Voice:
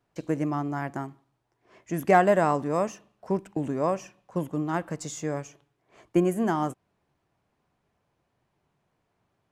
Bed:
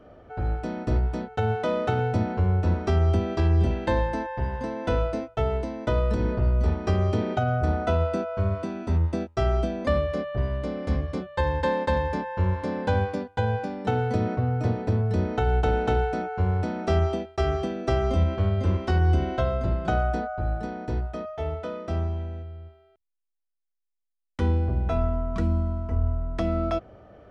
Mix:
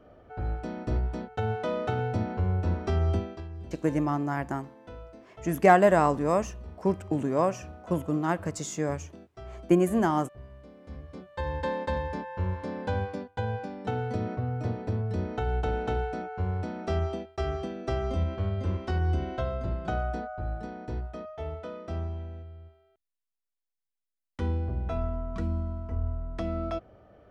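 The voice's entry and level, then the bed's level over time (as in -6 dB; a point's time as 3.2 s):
3.55 s, +1.0 dB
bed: 3.17 s -4.5 dB
3.48 s -20 dB
10.78 s -20 dB
11.53 s -6 dB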